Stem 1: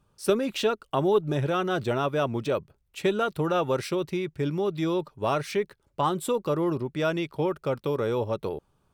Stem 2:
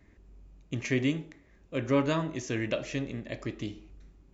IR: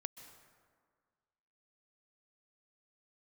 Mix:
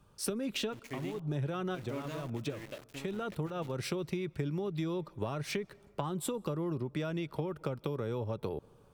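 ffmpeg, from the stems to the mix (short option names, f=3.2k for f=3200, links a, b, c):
-filter_complex "[0:a]acrossover=split=230[a][b];[b]acompressor=threshold=-33dB:ratio=5[c];[a][c]amix=inputs=2:normalize=0,volume=2.5dB,asplit=2[d][e];[e]volume=-16dB[f];[1:a]bandreject=f=308.4:t=h:w=4,bandreject=f=616.8:t=h:w=4,bandreject=f=925.2:t=h:w=4,bandreject=f=1.2336k:t=h:w=4,bandreject=f=1.542k:t=h:w=4,bandreject=f=1.8504k:t=h:w=4,bandreject=f=2.1588k:t=h:w=4,bandreject=f=2.4672k:t=h:w=4,bandreject=f=2.7756k:t=h:w=4,bandreject=f=3.084k:t=h:w=4,bandreject=f=3.3924k:t=h:w=4,bandreject=f=3.7008k:t=h:w=4,bandreject=f=4.0092k:t=h:w=4,bandreject=f=4.3176k:t=h:w=4,bandreject=f=4.626k:t=h:w=4,bandreject=f=4.9344k:t=h:w=4,bandreject=f=5.2428k:t=h:w=4,bandreject=f=5.5512k:t=h:w=4,bandreject=f=5.8596k:t=h:w=4,bandreject=f=6.168k:t=h:w=4,bandreject=f=6.4764k:t=h:w=4,bandreject=f=6.7848k:t=h:w=4,bandreject=f=7.0932k:t=h:w=4,bandreject=f=7.4016k:t=h:w=4,bandreject=f=7.71k:t=h:w=4,bandreject=f=8.0184k:t=h:w=4,bandreject=f=8.3268k:t=h:w=4,bandreject=f=8.6352k:t=h:w=4,bandreject=f=8.9436k:t=h:w=4,bandreject=f=9.252k:t=h:w=4,bandreject=f=9.5604k:t=h:w=4,bandreject=f=9.8688k:t=h:w=4,bandreject=f=10.1772k:t=h:w=4,aeval=exprs='val(0)*gte(abs(val(0)),0.0251)':c=same,volume=-13.5dB,asplit=2[g][h];[h]apad=whole_len=394219[i];[d][i]sidechaincompress=threshold=-56dB:ratio=8:attack=32:release=195[j];[2:a]atrim=start_sample=2205[k];[f][k]afir=irnorm=-1:irlink=0[l];[j][g][l]amix=inputs=3:normalize=0,acompressor=threshold=-32dB:ratio=5"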